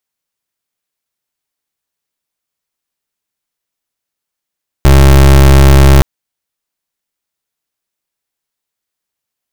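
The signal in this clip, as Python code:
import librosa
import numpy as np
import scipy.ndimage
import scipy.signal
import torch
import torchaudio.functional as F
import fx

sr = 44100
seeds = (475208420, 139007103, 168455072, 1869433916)

y = fx.pulse(sr, length_s=1.17, hz=68.4, level_db=-3.5, duty_pct=28)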